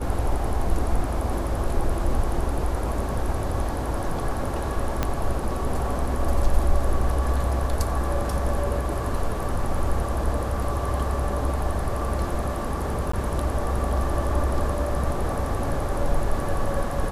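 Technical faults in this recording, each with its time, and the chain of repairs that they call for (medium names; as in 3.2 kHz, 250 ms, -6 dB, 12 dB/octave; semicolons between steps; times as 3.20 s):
5.03 s: pop -9 dBFS
13.12–13.13 s: dropout 14 ms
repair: de-click; interpolate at 13.12 s, 14 ms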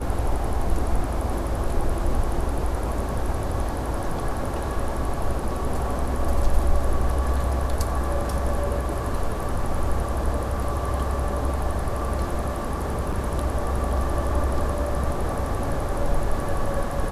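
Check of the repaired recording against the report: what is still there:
5.03 s: pop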